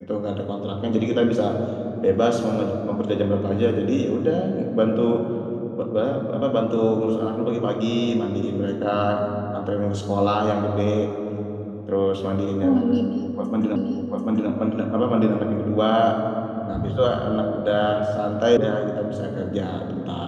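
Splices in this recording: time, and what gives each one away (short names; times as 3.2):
13.76 repeat of the last 0.74 s
18.57 sound cut off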